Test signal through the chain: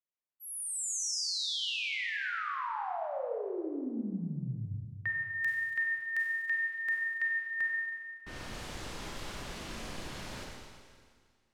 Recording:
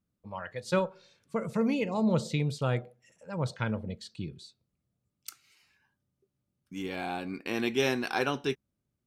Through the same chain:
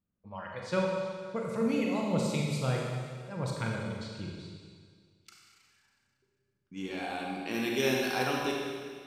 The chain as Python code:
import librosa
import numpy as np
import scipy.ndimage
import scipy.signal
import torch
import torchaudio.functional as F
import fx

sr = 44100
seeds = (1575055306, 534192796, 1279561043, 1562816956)

y = fx.env_lowpass(x, sr, base_hz=2400.0, full_db=-28.0)
y = fx.high_shelf(y, sr, hz=8300.0, db=11.5)
y = fx.rev_schroeder(y, sr, rt60_s=1.9, comb_ms=31, drr_db=-1.5)
y = y * librosa.db_to_amplitude(-4.5)